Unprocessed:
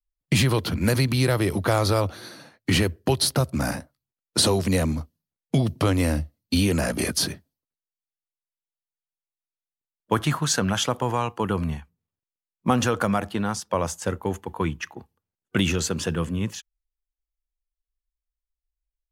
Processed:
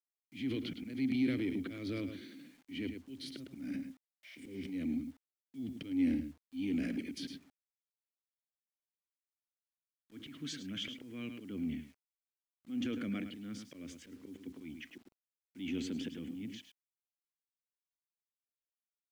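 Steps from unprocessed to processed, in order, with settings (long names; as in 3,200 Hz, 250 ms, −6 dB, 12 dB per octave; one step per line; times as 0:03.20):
low-shelf EQ 460 Hz +6 dB
healed spectral selection 0:04.27–0:04.60, 560–6,800 Hz after
dynamic equaliser 150 Hz, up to −4 dB, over −29 dBFS, Q 2.2
formant filter i
in parallel at −0.5 dB: downward compressor 6 to 1, threshold −33 dBFS, peak gain reduction 14 dB
on the sum: volume swells 190 ms
on a send: single-tap delay 106 ms −12 dB
on the sum: transient designer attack −4 dB, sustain +5 dB
bit reduction 10 bits
level −7 dB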